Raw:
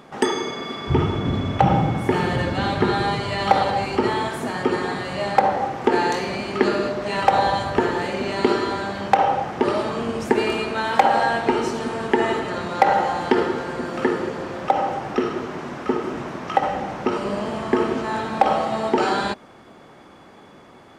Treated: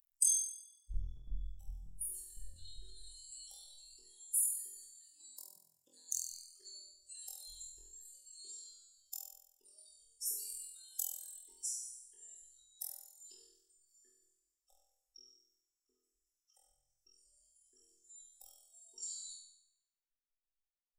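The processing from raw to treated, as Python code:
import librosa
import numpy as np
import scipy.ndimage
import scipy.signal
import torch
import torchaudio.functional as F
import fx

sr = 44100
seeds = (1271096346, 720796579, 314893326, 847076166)

p1 = fx.bin_expand(x, sr, power=3.0)
p2 = scipy.signal.sosfilt(scipy.signal.cheby2(4, 70, [100.0, 2400.0], 'bandstop', fs=sr, output='sos'), p1)
p3 = fx.low_shelf(p2, sr, hz=110.0, db=7.5)
p4 = fx.transient(p3, sr, attack_db=6, sustain_db=10)
p5 = fx.rider(p4, sr, range_db=4, speed_s=0.5)
p6 = p4 + (p5 * 10.0 ** (1.0 / 20.0))
p7 = fx.ring_mod(p6, sr, carrier_hz=fx.line((5.1, 330.0), (6.21, 69.0)), at=(5.1, 6.21), fade=0.02)
p8 = p7 + fx.room_flutter(p7, sr, wall_m=4.1, rt60_s=0.77, dry=0)
y = p8 * 10.0 ** (4.5 / 20.0)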